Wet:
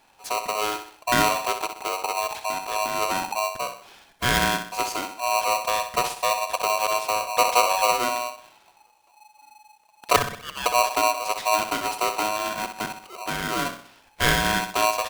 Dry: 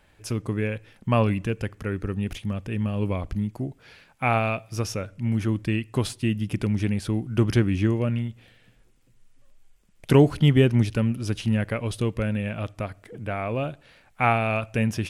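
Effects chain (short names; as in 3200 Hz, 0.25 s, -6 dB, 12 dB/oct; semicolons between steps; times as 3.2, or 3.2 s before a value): 10.16–10.66 brick-wall FIR band-pass 610–2700 Hz; feedback echo 63 ms, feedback 43%, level -9 dB; polarity switched at an audio rate 850 Hz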